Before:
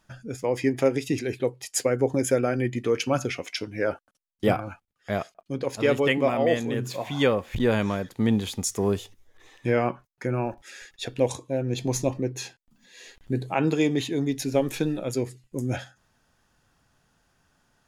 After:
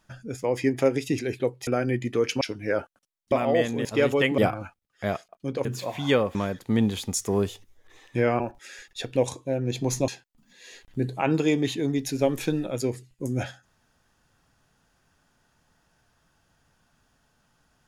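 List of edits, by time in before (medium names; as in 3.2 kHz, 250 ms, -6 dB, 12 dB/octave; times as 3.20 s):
1.67–2.38 s: delete
3.12–3.53 s: delete
4.44–5.71 s: swap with 6.24–6.77 s
7.47–7.85 s: delete
9.90–10.43 s: delete
12.11–12.41 s: delete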